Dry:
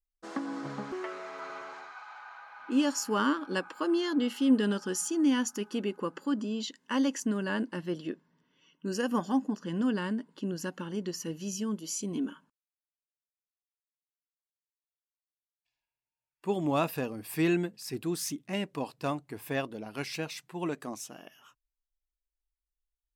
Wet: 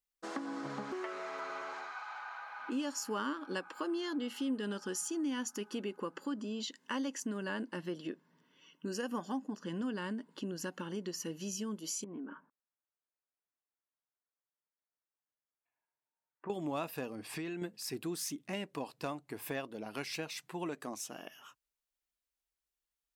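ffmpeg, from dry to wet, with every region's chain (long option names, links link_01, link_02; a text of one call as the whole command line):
ffmpeg -i in.wav -filter_complex "[0:a]asettb=1/sr,asplit=3[link_01][link_02][link_03];[link_01]atrim=end=12.044[link_04];[link_02]atrim=start=12.04:end=16.5,asetpts=PTS-STARTPTS,afade=type=in:duration=0.004:curve=qsin,afade=type=out:start_time=4.456:duration=0.004:curve=qsin,lowpass=frequency=1800:width=0.5412,lowpass=frequency=1800:width=1.3066,lowshelf=frequency=130:gain=-10.5,acompressor=threshold=-40dB:ratio=6:attack=3.2:release=140:knee=1:detection=peak[link_05];[link_03]atrim=start=16.496[link_06];[link_04][link_05]acrossfade=duration=0.004:curve1=hsin:curve2=qsin[link_07];[link_07][link_06]acrossfade=duration=0.004:curve1=qsin:curve2=hsin,asettb=1/sr,asplit=3[link_08][link_09][link_10];[link_08]atrim=end=17.154[link_11];[link_09]atrim=start=17.15:end=17.62,asetpts=PTS-STARTPTS,afade=type=in:duration=0.004:curve=qsin,afade=type=out:start_time=0.466:duration=0.004:curve=qsin,lowpass=6800,acompressor=threshold=-35dB:ratio=6:attack=3.2:release=140:knee=1:detection=peak[link_12];[link_10]atrim=start=17.616[link_13];[link_11][link_12]acrossfade=duration=0.004:curve1=hsin:curve2=qsin[link_14];[link_14][link_13]acrossfade=duration=0.004:curve1=qsin:curve2=hsin,highpass=frequency=200:poles=1,acompressor=threshold=-42dB:ratio=2.5,volume=3dB" out.wav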